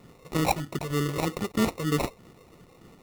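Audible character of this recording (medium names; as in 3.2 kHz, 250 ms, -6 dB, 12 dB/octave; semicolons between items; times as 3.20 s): phasing stages 12, 3.2 Hz, lowest notch 260–1300 Hz; aliases and images of a low sample rate 1.6 kHz, jitter 0%; MP3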